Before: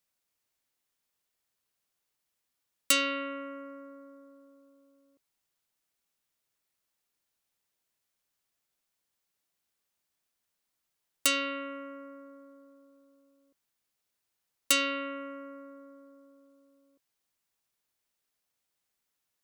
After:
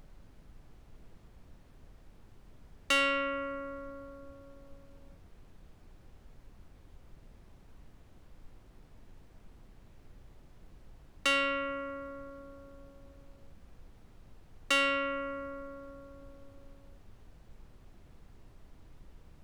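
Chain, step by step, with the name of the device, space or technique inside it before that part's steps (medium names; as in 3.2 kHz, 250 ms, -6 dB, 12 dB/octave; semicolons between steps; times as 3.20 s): aircraft cabin announcement (band-pass 350–3100 Hz; saturation -27 dBFS, distortion -13 dB; brown noise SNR 12 dB); trim +5.5 dB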